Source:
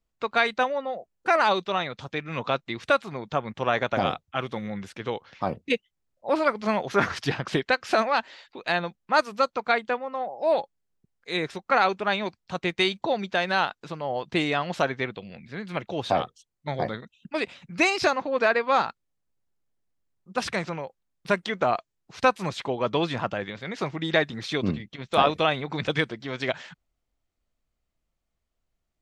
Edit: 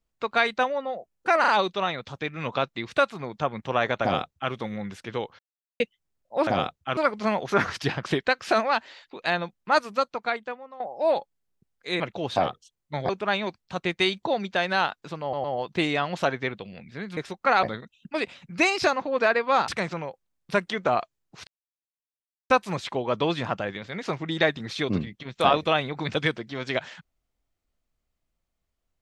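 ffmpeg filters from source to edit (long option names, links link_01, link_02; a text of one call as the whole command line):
ffmpeg -i in.wav -filter_complex "[0:a]asplit=16[link_01][link_02][link_03][link_04][link_05][link_06][link_07][link_08][link_09][link_10][link_11][link_12][link_13][link_14][link_15][link_16];[link_01]atrim=end=1.442[link_17];[link_02]atrim=start=1.398:end=1.442[link_18];[link_03]atrim=start=1.398:end=5.31,asetpts=PTS-STARTPTS,afade=type=out:start_time=3.908:duration=0.004:curve=hsin[link_19];[link_04]atrim=start=5.31:end=5.72,asetpts=PTS-STARTPTS,volume=0[link_20];[link_05]atrim=start=5.72:end=6.392,asetpts=PTS-STARTPTS,afade=type=in:duration=0.004:curve=hsin[link_21];[link_06]atrim=start=3.938:end=4.442[link_22];[link_07]atrim=start=6.388:end=10.22,asetpts=PTS-STARTPTS,afade=type=out:start_time=2.862:duration=0.97:silence=0.177828[link_23];[link_08]atrim=start=10.22:end=11.422,asetpts=PTS-STARTPTS,afade=type=in:duration=0.004:curve=hsin:silence=0.177828[link_24];[link_09]atrim=start=15.738:end=16.832[link_25];[link_10]atrim=start=11.878:end=14.122[link_26];[link_11]atrim=start=14.008:end=14.122[link_27];[link_12]atrim=start=14.008:end=15.742[link_28];[link_13]atrim=start=11.418:end=11.882[link_29];[link_14]atrim=start=16.828:end=18.882[link_30];[link_15]atrim=start=20.438:end=22.23,asetpts=PTS-STARTPTS,afade=type=out:start_time=1.788:duration=0.004:curve=hsin,apad=pad_dur=1.03[link_31];[link_16]atrim=start=22.23,asetpts=PTS-STARTPTS,afade=type=in:duration=0.004:curve=hsin[link_32];[link_17][link_18]acrossfade=duration=0.004:curve1=hsin:curve2=hsin[link_33];[link_19][link_20][link_21]concat=n=3:v=0:a=1[link_34];[link_33][link_34]acrossfade=duration=0.004:curve1=hsin:curve2=hsin[link_35];[link_35][link_22]acrossfade=duration=0.004:curve1=hsin:curve2=hsin[link_36];[link_23][link_24]concat=n=2:v=0:a=1[link_37];[link_36][link_37]acrossfade=duration=0.004:curve1=hsin:curve2=hsin[link_38];[link_38][link_25]acrossfade=duration=0.004:curve1=hsin:curve2=hsin[link_39];[link_39][link_26]acrossfade=duration=0.004:curve1=hsin:curve2=hsin[link_40];[link_40][link_27]acrossfade=duration=0.004:curve1=hsin:curve2=hsin[link_41];[link_41][link_28]acrossfade=duration=0.004:curve1=hsin:curve2=hsin[link_42];[link_42][link_29]acrossfade=duration=0.004:curve1=hsin:curve2=hsin[link_43];[link_43][link_30]acrossfade=duration=0.004:curve1=hsin:curve2=hsin[link_44];[link_31][link_32]concat=n=2:v=0:a=1[link_45];[link_44][link_45]acrossfade=duration=0.004:curve1=hsin:curve2=hsin" out.wav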